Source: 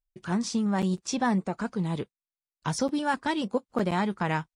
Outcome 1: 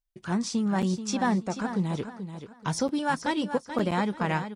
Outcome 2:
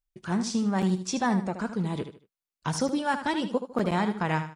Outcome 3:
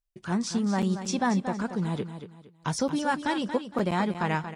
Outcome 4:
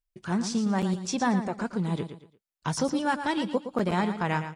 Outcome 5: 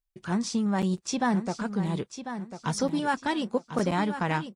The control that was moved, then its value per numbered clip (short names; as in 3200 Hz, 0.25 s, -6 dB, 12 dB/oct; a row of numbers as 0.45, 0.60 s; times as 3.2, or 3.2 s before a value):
feedback echo, time: 433, 76, 231, 115, 1046 ms